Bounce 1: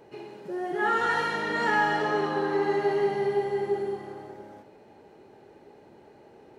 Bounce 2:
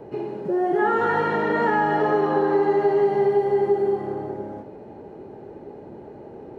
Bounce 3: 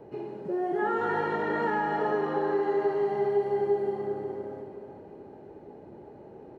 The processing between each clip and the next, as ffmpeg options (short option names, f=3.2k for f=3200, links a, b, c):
-filter_complex "[0:a]tiltshelf=f=1.4k:g=9.5,acrossover=split=390|3600[a][b][c];[a]acompressor=threshold=-34dB:ratio=4[d];[b]acompressor=threshold=-24dB:ratio=4[e];[c]acompressor=threshold=-60dB:ratio=4[f];[d][e][f]amix=inputs=3:normalize=0,volume=5dB"
-af "aecho=1:1:371|742|1113|1484|1855:0.355|0.16|0.0718|0.0323|0.0145,volume=-7.5dB"